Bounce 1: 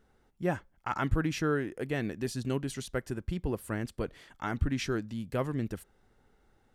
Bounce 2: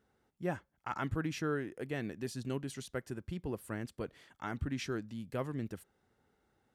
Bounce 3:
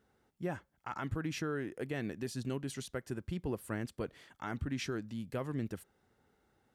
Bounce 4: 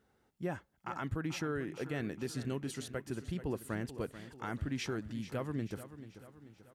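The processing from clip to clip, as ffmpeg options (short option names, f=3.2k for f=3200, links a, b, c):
-af "highpass=78,volume=-5.5dB"
-af "alimiter=level_in=5dB:limit=-24dB:level=0:latency=1:release=131,volume=-5dB,volume=2dB"
-af "aecho=1:1:437|874|1311|1748|2185:0.224|0.112|0.056|0.028|0.014"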